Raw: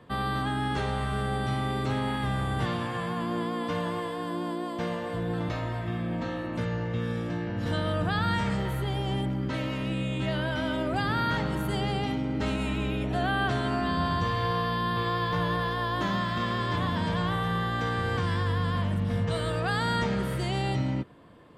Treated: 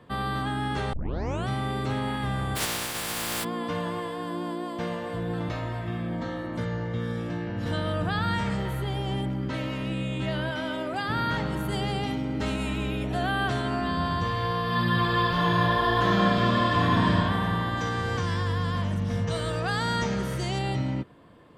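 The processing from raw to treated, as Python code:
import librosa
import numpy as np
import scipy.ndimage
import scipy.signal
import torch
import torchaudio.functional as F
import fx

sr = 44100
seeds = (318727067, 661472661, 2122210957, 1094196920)

y = fx.spec_flatten(x, sr, power=0.22, at=(2.55, 3.43), fade=0.02)
y = fx.notch(y, sr, hz=2600.0, q=6.5, at=(6.09, 7.19))
y = fx.highpass(y, sr, hz=fx.line((10.5, 190.0), (11.08, 420.0)), slope=6, at=(10.5, 11.08), fade=0.02)
y = fx.high_shelf(y, sr, hz=5800.0, db=5.5, at=(11.72, 13.62))
y = fx.reverb_throw(y, sr, start_s=14.62, length_s=2.46, rt60_s=2.8, drr_db=-5.0)
y = fx.peak_eq(y, sr, hz=6100.0, db=12.0, octaves=0.4, at=(17.77, 20.59))
y = fx.edit(y, sr, fx.tape_start(start_s=0.93, length_s=0.55), tone=tone)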